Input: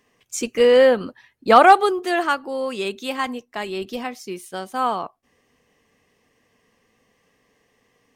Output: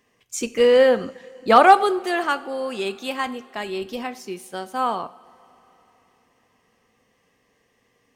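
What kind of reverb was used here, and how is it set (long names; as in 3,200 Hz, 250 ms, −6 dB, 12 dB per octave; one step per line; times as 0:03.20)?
coupled-rooms reverb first 0.46 s, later 4 s, from −18 dB, DRR 12.5 dB
level −1.5 dB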